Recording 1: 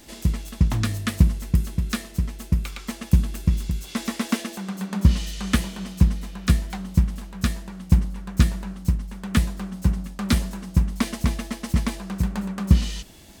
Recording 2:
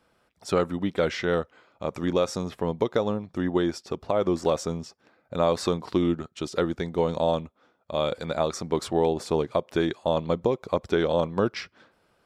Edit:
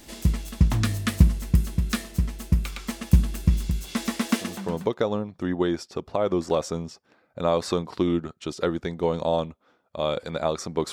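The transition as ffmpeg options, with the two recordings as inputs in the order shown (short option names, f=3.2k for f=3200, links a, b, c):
-filter_complex "[0:a]apad=whole_dur=10.92,atrim=end=10.92,atrim=end=4.95,asetpts=PTS-STARTPTS[a];[1:a]atrim=start=2.28:end=8.87,asetpts=PTS-STARTPTS[b];[a][b]acrossfade=d=0.62:c1=qsin:c2=qsin"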